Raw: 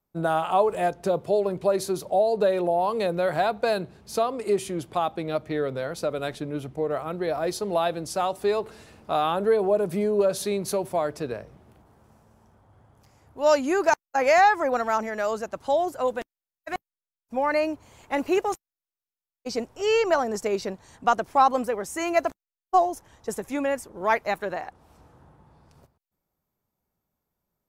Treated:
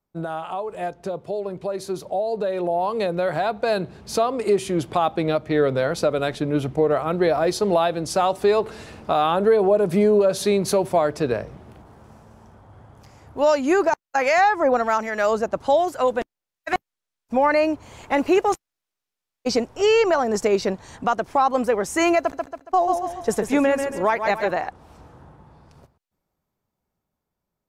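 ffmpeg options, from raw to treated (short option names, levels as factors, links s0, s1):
-filter_complex "[0:a]asettb=1/sr,asplit=3[s0][s1][s2];[s0]atrim=end=13.834[s3];[s1]atrim=start=13.83:end=16.73,asetpts=PTS-STARTPTS,afade=t=in:d=0.004:c=qsin,afade=t=out:st=2.896:d=0.004:c=qsin,acrossover=split=1100[s4][s5];[s4]aeval=exprs='val(0)*(1-0.5/2+0.5/2*cos(2*PI*1.2*n/s))':c=same[s6];[s5]aeval=exprs='val(0)*(1-0.5/2-0.5/2*cos(2*PI*1.2*n/s))':c=same[s7];[s6][s7]amix=inputs=2:normalize=0[s8];[s2]atrim=start=16.726[s9];[s3][s8]acrossfade=d=0.004:c1=hsin:c2=qsin[s10];[s10][s9]acrossfade=d=0.004:c1=qsin:c2=hsin,asettb=1/sr,asplit=3[s11][s12][s13];[s11]atrim=end=22.194[s14];[s12]atrim=start=22.19:end=24.51,asetpts=PTS-STARTPTS,afade=t=in:d=0.004:c=qsin,afade=t=out:st=2.316:d=0.004:c=qsin,aecho=1:1:139|278|417|556:0.398|0.135|0.046|0.0156,atrim=end_sample=102312[s15];[s13]atrim=start=24.506[s16];[s14][s15]acrossfade=d=0.004:c1=hsin:c2=qsin[s17];[s17][s16]acrossfade=d=0.004:c1=qsin:c2=hsin,highshelf=f=11000:g=-12,alimiter=limit=0.106:level=0:latency=1:release=377,dynaudnorm=f=700:g=9:m=3.16"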